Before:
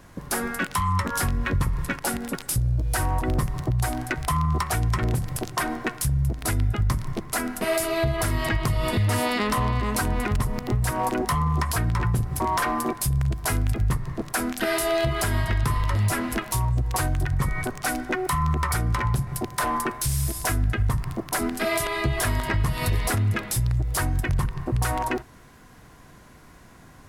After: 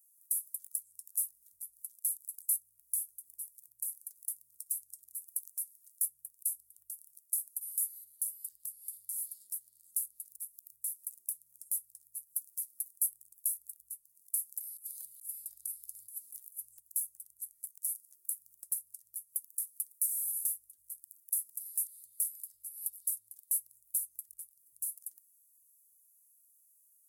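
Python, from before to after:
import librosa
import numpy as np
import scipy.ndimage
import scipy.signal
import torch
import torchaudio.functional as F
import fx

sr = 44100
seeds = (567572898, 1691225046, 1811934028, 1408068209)

y = scipy.signal.sosfilt(scipy.signal.cheby2(4, 70, 2700.0, 'highpass', fs=sr, output='sos'), x)
y = fx.over_compress(y, sr, threshold_db=-43.0, ratio=-0.5, at=(14.76, 16.79), fade=0.02)
y = y * 10.0 ** (2.0 / 20.0)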